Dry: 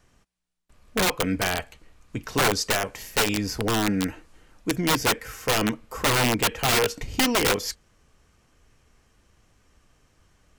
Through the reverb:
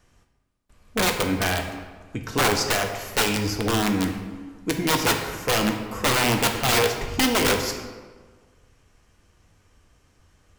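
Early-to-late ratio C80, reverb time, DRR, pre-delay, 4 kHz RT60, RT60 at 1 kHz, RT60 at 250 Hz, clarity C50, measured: 8.5 dB, 1.5 s, 4.0 dB, 5 ms, 0.90 s, 1.4 s, 1.5 s, 6.5 dB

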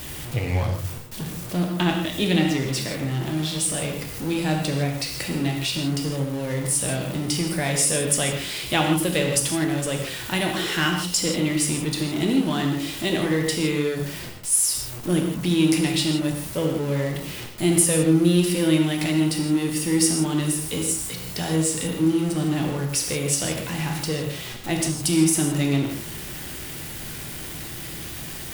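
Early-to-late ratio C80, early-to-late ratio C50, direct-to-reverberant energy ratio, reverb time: 6.0 dB, 4.0 dB, 1.5 dB, non-exponential decay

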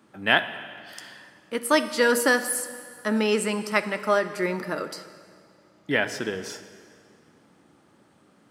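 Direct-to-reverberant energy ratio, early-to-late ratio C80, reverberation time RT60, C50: 10.5 dB, 13.0 dB, 2.1 s, 12.0 dB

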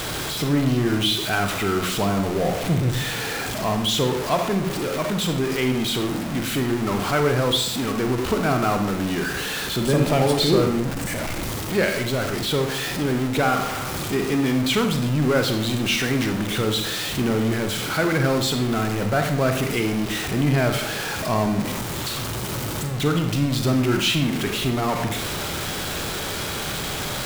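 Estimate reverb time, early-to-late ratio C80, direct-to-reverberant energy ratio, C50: 0.70 s, 10.5 dB, 5.0 dB, 7.0 dB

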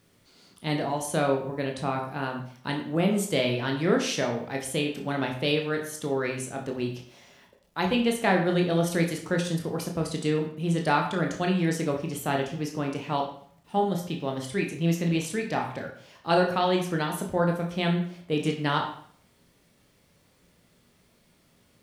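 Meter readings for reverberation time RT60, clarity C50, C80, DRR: 0.55 s, 7.0 dB, 10.5 dB, 1.0 dB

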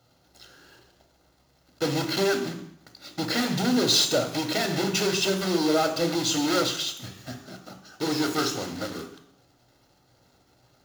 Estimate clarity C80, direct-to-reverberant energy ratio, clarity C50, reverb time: 12.5 dB, 5.5 dB, 9.5 dB, 0.70 s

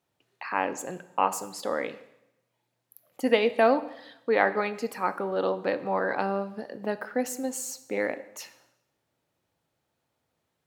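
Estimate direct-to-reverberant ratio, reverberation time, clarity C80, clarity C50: 12.0 dB, 0.85 s, 17.5 dB, 15.0 dB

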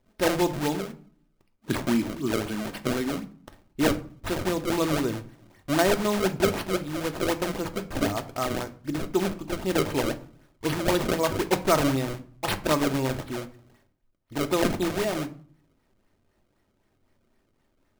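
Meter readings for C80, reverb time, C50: 21.0 dB, 0.45 s, 16.0 dB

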